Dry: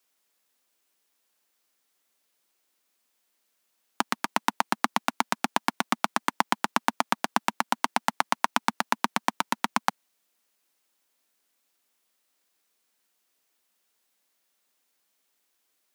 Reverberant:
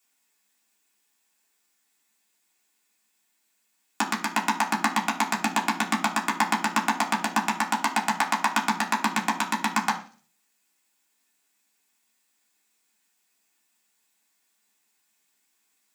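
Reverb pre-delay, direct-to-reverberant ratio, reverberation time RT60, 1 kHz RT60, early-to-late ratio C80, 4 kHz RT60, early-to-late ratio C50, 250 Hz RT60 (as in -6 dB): 3 ms, -4.0 dB, 0.45 s, 0.35 s, 15.5 dB, 0.55 s, 12.0 dB, 0.55 s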